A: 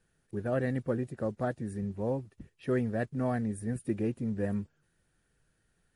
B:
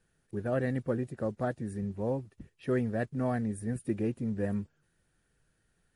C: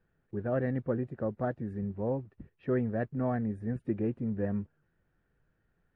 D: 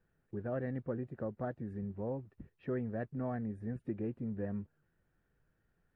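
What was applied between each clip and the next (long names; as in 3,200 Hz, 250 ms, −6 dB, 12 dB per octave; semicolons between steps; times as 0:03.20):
no processing that can be heard
low-pass filter 1,800 Hz 12 dB per octave
downward compressor 1.5 to 1, threshold −38 dBFS, peak gain reduction 5 dB; level −2.5 dB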